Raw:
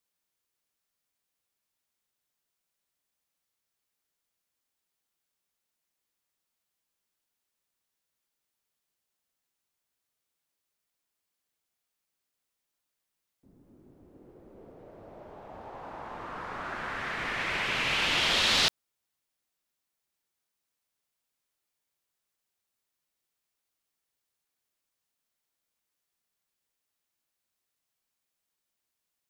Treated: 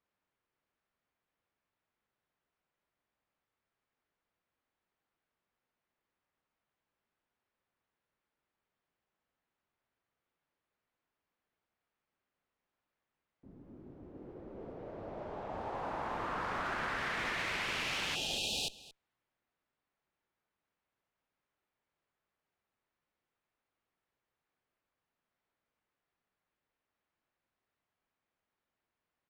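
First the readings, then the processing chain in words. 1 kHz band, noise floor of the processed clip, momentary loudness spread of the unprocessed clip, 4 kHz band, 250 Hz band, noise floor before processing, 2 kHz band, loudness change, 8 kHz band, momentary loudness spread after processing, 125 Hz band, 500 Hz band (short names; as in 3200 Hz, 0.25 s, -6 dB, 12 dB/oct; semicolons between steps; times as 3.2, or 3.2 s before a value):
-3.0 dB, under -85 dBFS, 20 LU, -9.5 dB, -2.5 dB, -85 dBFS, -7.0 dB, -9.5 dB, -6.0 dB, 19 LU, -3.5 dB, -2.0 dB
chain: one-sided clip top -34 dBFS; spectral delete 18.15–18.7, 900–2400 Hz; compressor 8:1, threshold -38 dBFS, peak gain reduction 13 dB; low-pass opened by the level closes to 1900 Hz, open at -39 dBFS; on a send: echo 0.227 s -19 dB; on the sum: gain +4.5 dB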